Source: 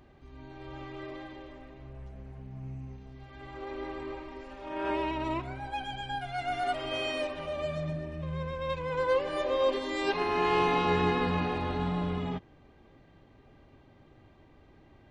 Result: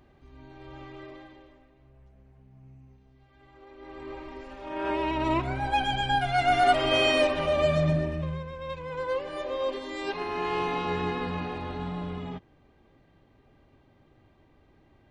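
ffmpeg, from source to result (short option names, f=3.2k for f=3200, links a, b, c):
-af "volume=19.5dB,afade=t=out:st=0.89:d=0.8:silence=0.334965,afade=t=in:st=3.78:d=0.49:silence=0.223872,afade=t=in:st=4.98:d=0.75:silence=0.398107,afade=t=out:st=8:d=0.43:silence=0.223872"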